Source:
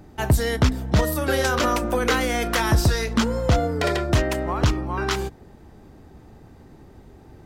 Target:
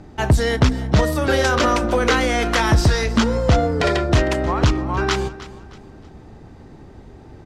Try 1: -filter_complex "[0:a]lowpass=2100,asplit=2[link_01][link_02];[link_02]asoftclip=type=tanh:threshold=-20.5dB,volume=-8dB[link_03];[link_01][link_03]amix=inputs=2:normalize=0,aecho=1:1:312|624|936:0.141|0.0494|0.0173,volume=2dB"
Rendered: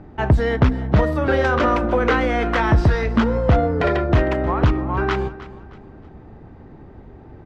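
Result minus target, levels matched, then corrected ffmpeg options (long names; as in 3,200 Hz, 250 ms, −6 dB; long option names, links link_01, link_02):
8,000 Hz band −17.5 dB
-filter_complex "[0:a]lowpass=7200,asplit=2[link_01][link_02];[link_02]asoftclip=type=tanh:threshold=-20.5dB,volume=-8dB[link_03];[link_01][link_03]amix=inputs=2:normalize=0,aecho=1:1:312|624|936:0.141|0.0494|0.0173,volume=2dB"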